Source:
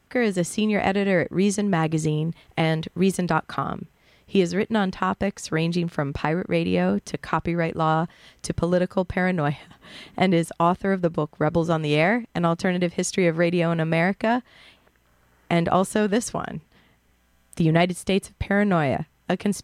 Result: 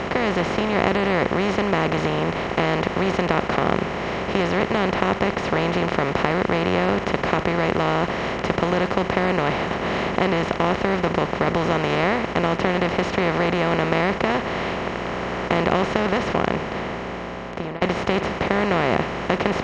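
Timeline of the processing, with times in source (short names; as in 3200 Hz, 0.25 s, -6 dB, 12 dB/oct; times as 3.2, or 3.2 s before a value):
15.79–17.82 studio fade out
whole clip: per-bin compression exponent 0.2; LPF 4700 Hz 24 dB/oct; gain -7.5 dB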